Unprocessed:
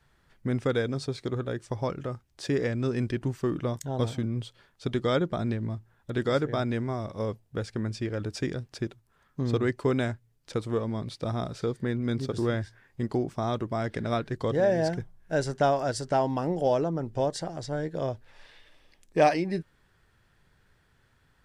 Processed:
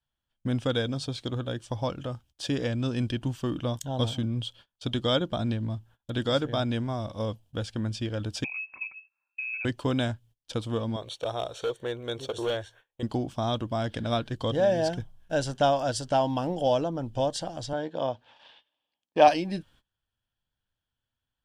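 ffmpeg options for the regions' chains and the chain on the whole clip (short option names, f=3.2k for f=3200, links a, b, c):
-filter_complex "[0:a]asettb=1/sr,asplit=3[a][b][c];[a]atrim=end=8.444[d];[b]atrim=start=8.44:end=9.65,asetpts=PTS-STARTPTS,afade=t=in:d=0.004:c=qsin,afade=t=out:st=1.206:d=0.004:c=qsin,equalizer=f=100:w=0.44:g=10,acompressor=threshold=-34dB:ratio=8:attack=3.2:release=140:knee=1:detection=peak,lowpass=f=2.3k:t=q:w=0.5098,lowpass=f=2.3k:t=q:w=0.6013,lowpass=f=2.3k:t=q:w=0.9,lowpass=f=2.3k:t=q:w=2.563,afreqshift=-2700[e];[c]atrim=start=9.646[f];[d][e]acrossfade=d=0.004:c1=hsin:c2=qsin[g];[g][f]acrossfade=d=0.004:c1=qsin:c2=hsin,asettb=1/sr,asplit=3[h][i][j];[h]atrim=end=10.964[k];[i]atrim=start=10.96:end=13.03,asetpts=PTS-STARTPTS,afade=t=in:d=0.004:c=qsin,afade=t=out:st=2.066:d=0.004:c=qsin,lowshelf=f=320:t=q:w=3:g=-10,asoftclip=type=hard:threshold=-22.5dB,asuperstop=centerf=4900:order=8:qfactor=6.1[l];[j]atrim=start=13.026[m];[k][l]acrossfade=d=0.004:c1=hsin:c2=qsin[n];[n][m]acrossfade=d=0.004:c1=qsin:c2=hsin,asettb=1/sr,asplit=3[o][p][q];[o]atrim=end=17.734[r];[p]atrim=start=17.73:end=19.28,asetpts=PTS-STARTPTS,afade=t=in:d=0.004:c=qsin,afade=t=out:st=1.546:d=0.004:c=qsin,highpass=180,lowpass=4.5k,equalizer=f=890:w=2.2:g=6.5[s];[q]atrim=start=19.276[t];[r][s]acrossfade=d=0.004:c1=hsin:c2=qsin[u];[u][t]acrossfade=d=0.004:c1=qsin:c2=hsin,agate=range=-23dB:threshold=-54dB:ratio=16:detection=peak,equalizer=f=160:t=o:w=0.33:g=-7,equalizer=f=400:t=o:w=0.33:g=-11,equalizer=f=1.25k:t=o:w=0.33:g=-4,equalizer=f=2k:t=o:w=0.33:g=-10,equalizer=f=3.15k:t=o:w=0.33:g=11,volume=2dB"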